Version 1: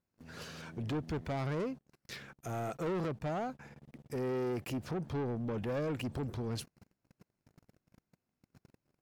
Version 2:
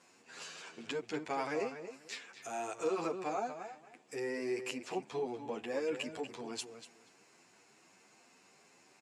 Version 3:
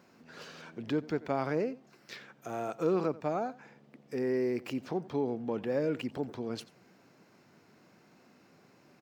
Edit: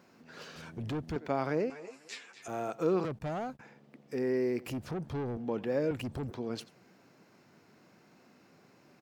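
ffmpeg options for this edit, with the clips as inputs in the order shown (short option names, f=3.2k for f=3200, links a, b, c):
-filter_complex "[0:a]asplit=4[a][b][c][d];[2:a]asplit=6[e][f][g][h][i][j];[e]atrim=end=0.562[k];[a]atrim=start=0.558:end=1.162[l];[f]atrim=start=1.158:end=1.702[m];[1:a]atrim=start=1.698:end=2.482[n];[g]atrim=start=2.478:end=3.052[o];[b]atrim=start=3.048:end=3.612[p];[h]atrim=start=3.608:end=4.662[q];[c]atrim=start=4.658:end=5.372[r];[i]atrim=start=5.368:end=5.912[s];[d]atrim=start=5.908:end=6.312[t];[j]atrim=start=6.308[u];[k][l]acrossfade=d=0.004:c1=hsin:c2=hsin[v];[v][m]acrossfade=d=0.004:c1=hsin:c2=hsin[w];[w][n]acrossfade=d=0.004:c1=hsin:c2=hsin[x];[x][o]acrossfade=d=0.004:c1=hsin:c2=hsin[y];[y][p]acrossfade=d=0.004:c1=hsin:c2=hsin[z];[z][q]acrossfade=d=0.004:c1=hsin:c2=hsin[aa];[aa][r]acrossfade=d=0.004:c1=hsin:c2=hsin[ab];[ab][s]acrossfade=d=0.004:c1=hsin:c2=hsin[ac];[ac][t]acrossfade=d=0.004:c1=hsin:c2=hsin[ad];[ad][u]acrossfade=d=0.004:c1=hsin:c2=hsin"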